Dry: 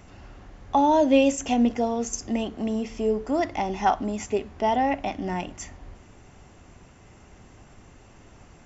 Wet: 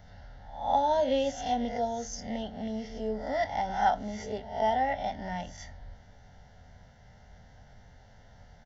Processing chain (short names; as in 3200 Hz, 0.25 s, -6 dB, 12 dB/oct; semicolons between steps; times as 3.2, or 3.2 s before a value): spectral swells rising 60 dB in 0.55 s; fixed phaser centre 1700 Hz, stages 8; doubler 23 ms -12 dB; gain -4 dB